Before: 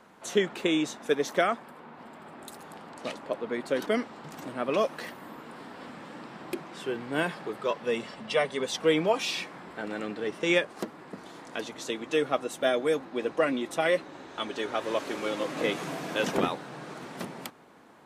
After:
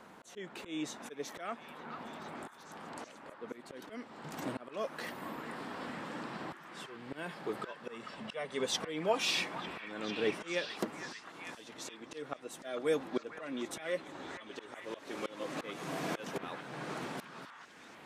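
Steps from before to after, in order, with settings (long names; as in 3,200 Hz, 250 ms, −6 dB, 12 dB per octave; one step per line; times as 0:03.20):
volume swells 535 ms
echo through a band-pass that steps 449 ms, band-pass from 1,400 Hz, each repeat 0.7 octaves, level −5 dB
level +1 dB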